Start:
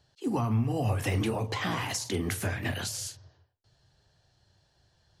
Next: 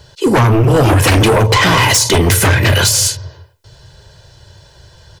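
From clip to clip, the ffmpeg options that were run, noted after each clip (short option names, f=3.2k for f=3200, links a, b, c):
-af "aecho=1:1:2:0.59,aeval=exprs='0.178*sin(PI/2*3.55*val(0)/0.178)':c=same,volume=8.5dB"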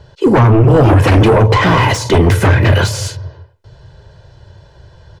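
-af "lowpass=f=1.2k:p=1,volume=2.5dB"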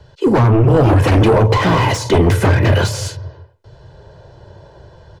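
-filter_complex "[0:a]acrossover=split=190|1100|2500[a][b][c][d];[b]dynaudnorm=f=470:g=5:m=13dB[e];[c]asoftclip=type=hard:threshold=-22dB[f];[a][e][f][d]amix=inputs=4:normalize=0,volume=-3dB"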